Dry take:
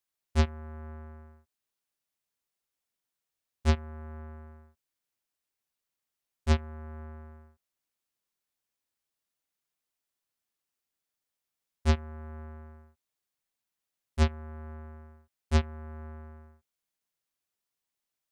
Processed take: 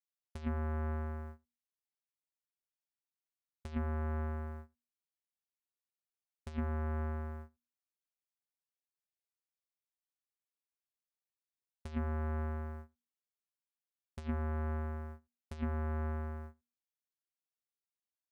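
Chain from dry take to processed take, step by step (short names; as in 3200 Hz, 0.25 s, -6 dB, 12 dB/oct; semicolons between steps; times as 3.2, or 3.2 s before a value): gate -53 dBFS, range -22 dB; notches 60/120/180/240 Hz; negative-ratio compressor -37 dBFS, ratio -1; gain +1 dB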